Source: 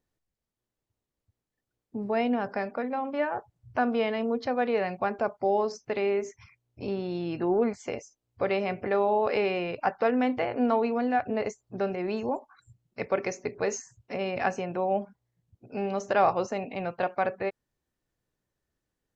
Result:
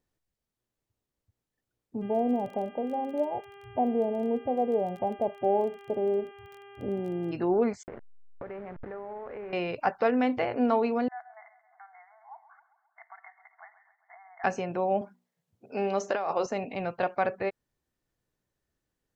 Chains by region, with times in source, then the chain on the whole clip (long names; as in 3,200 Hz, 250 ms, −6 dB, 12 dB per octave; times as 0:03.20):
0:02.01–0:07.31: Butterworth low-pass 880 Hz 72 dB per octave + hum with harmonics 400 Hz, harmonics 8, −50 dBFS −5 dB per octave + surface crackle 20 per second −40 dBFS
0:07.83–0:09.53: hold until the input has moved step −32 dBFS + Chebyshev low-pass filter 1,800 Hz, order 3 + downward compressor, threshold −37 dBFS
0:11.08–0:14.44: downward compressor 2 to 1, threshold −48 dBFS + linear-phase brick-wall band-pass 650–2,200 Hz + repeating echo 133 ms, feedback 59%, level −14.5 dB
0:15.01–0:16.46: high-pass filter 230 Hz + mains-hum notches 60/120/180/240/300/360 Hz + compressor whose output falls as the input rises −27 dBFS
whole clip: no processing